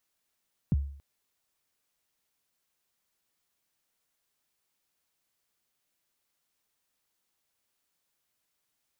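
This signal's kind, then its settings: kick drum length 0.28 s, from 220 Hz, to 70 Hz, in 28 ms, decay 0.55 s, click off, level -19 dB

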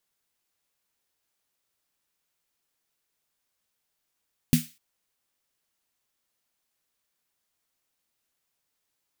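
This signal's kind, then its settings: snare drum length 0.25 s, tones 160 Hz, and 240 Hz, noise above 1900 Hz, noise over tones -11 dB, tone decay 0.19 s, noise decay 0.35 s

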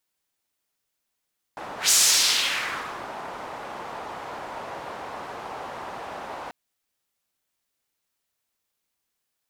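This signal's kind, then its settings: whoosh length 4.94 s, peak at 0.34, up 0.13 s, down 1.26 s, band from 850 Hz, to 7000 Hz, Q 1.6, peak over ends 19 dB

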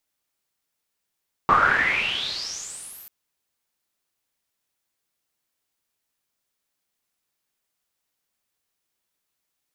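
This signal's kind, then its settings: swept filtered noise white, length 1.59 s lowpass, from 1100 Hz, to 14000 Hz, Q 10, exponential, gain ramp -37 dB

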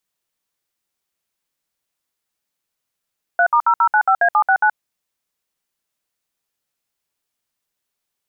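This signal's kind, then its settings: DTMF "3*0095A769", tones 75 ms, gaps 62 ms, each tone -13.5 dBFS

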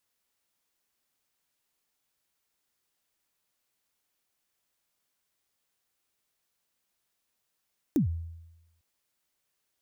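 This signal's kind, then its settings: kick drum length 0.85 s, from 340 Hz, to 83 Hz, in 0.114 s, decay 0.98 s, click on, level -19 dB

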